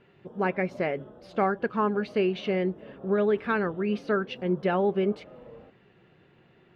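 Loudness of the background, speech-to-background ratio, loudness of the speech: -47.5 LUFS, 19.5 dB, -28.0 LUFS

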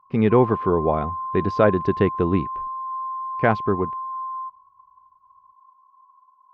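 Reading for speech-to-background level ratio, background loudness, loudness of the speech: 8.5 dB, -30.0 LUFS, -21.5 LUFS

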